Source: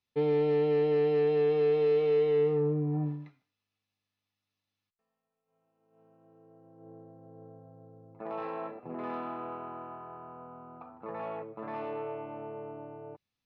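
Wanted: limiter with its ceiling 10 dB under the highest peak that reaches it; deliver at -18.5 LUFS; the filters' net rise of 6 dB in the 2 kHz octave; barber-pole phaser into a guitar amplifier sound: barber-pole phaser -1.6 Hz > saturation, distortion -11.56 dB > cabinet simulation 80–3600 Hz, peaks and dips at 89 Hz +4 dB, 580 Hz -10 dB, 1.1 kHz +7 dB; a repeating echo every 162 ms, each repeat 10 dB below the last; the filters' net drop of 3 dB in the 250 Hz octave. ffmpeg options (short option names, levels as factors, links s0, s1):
-filter_complex "[0:a]equalizer=f=250:t=o:g=-4,equalizer=f=2000:t=o:g=7,alimiter=level_in=1.88:limit=0.0631:level=0:latency=1,volume=0.531,aecho=1:1:162|324|486|648:0.316|0.101|0.0324|0.0104,asplit=2[s0][s1];[s1]afreqshift=-1.6[s2];[s0][s2]amix=inputs=2:normalize=1,asoftclip=threshold=0.0126,highpass=80,equalizer=f=89:t=q:w=4:g=4,equalizer=f=580:t=q:w=4:g=-10,equalizer=f=1100:t=q:w=4:g=7,lowpass=f=3600:w=0.5412,lowpass=f=3600:w=1.3066,volume=20"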